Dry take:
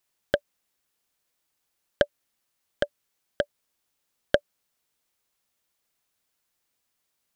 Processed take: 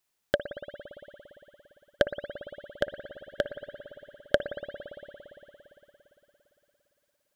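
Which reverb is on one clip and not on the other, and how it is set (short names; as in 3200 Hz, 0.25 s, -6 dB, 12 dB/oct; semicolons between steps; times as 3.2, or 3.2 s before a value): spring tank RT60 3.7 s, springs 57 ms, chirp 70 ms, DRR 7.5 dB; gain -1.5 dB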